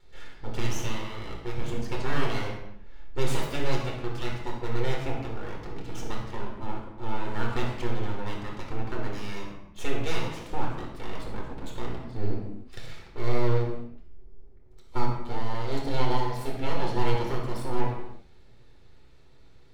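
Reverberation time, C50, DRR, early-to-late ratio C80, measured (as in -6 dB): no single decay rate, 3.0 dB, -2.0 dB, 5.5 dB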